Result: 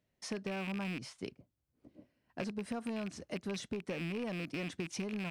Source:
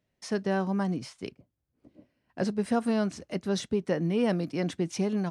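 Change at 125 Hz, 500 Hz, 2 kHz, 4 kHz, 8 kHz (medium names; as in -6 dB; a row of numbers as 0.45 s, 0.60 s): -10.5 dB, -11.5 dB, -4.0 dB, -5.5 dB, -6.0 dB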